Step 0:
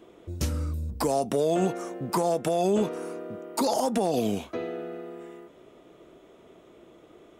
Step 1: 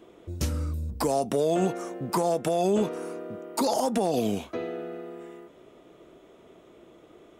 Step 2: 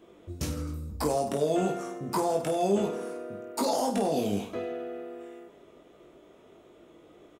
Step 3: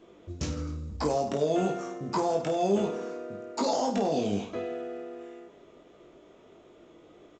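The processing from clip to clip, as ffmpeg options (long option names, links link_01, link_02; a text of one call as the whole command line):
ffmpeg -i in.wav -af anull out.wav
ffmpeg -i in.wav -af "aecho=1:1:20|50|95|162.5|263.8:0.631|0.398|0.251|0.158|0.1,volume=-4dB" out.wav
ffmpeg -i in.wav -ar 16000 -c:a pcm_mulaw out.wav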